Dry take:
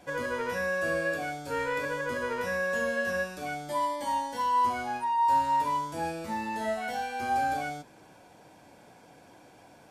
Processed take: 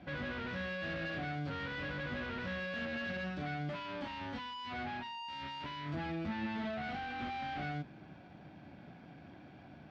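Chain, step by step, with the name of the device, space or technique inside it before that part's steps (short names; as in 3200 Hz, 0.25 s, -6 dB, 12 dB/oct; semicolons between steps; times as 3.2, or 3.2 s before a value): guitar amplifier (tube stage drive 41 dB, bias 0.8; tone controls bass +12 dB, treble -7 dB; speaker cabinet 77–4400 Hz, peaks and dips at 110 Hz -6 dB, 480 Hz -9 dB, 960 Hz -8 dB); gain +4 dB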